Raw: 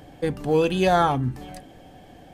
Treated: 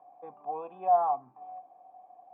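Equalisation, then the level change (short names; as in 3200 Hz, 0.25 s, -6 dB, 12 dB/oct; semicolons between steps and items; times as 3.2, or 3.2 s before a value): vocal tract filter a; Bessel high-pass 210 Hz, order 8; low shelf 360 Hz -6 dB; +3.0 dB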